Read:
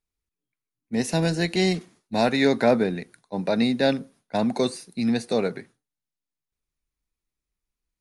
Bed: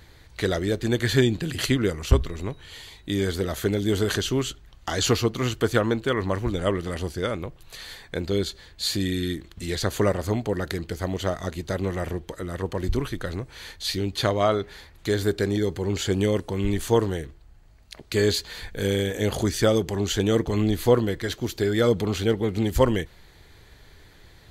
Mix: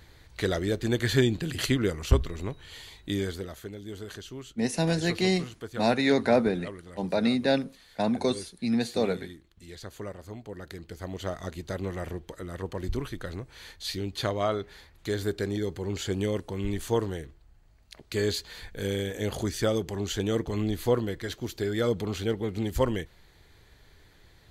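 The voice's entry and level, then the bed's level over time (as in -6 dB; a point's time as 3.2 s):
3.65 s, -3.0 dB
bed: 3.12 s -3 dB
3.69 s -16.5 dB
10.3 s -16.5 dB
11.38 s -6 dB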